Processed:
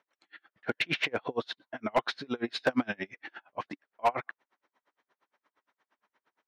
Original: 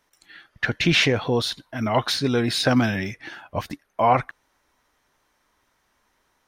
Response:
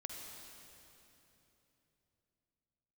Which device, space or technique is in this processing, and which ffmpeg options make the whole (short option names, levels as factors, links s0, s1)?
helicopter radio: -af "highpass=300,lowpass=2900,aeval=exprs='val(0)*pow(10,-35*(0.5-0.5*cos(2*PI*8.6*n/s))/20)':c=same,asoftclip=type=hard:threshold=0.133"